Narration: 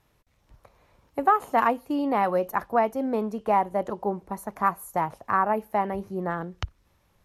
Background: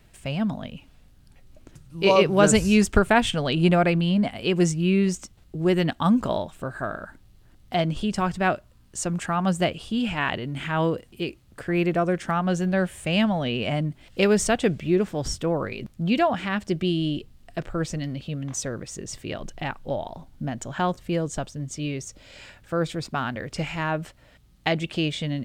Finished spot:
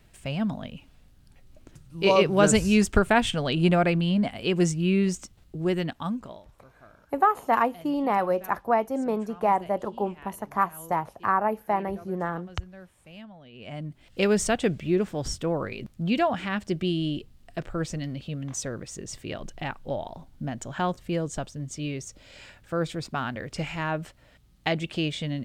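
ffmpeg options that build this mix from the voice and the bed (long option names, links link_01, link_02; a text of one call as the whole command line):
ffmpeg -i stem1.wav -i stem2.wav -filter_complex "[0:a]adelay=5950,volume=-0.5dB[link_01];[1:a]volume=19dB,afade=type=out:start_time=5.43:duration=0.99:silence=0.0841395,afade=type=in:start_time=13.52:duration=0.78:silence=0.0891251[link_02];[link_01][link_02]amix=inputs=2:normalize=0" out.wav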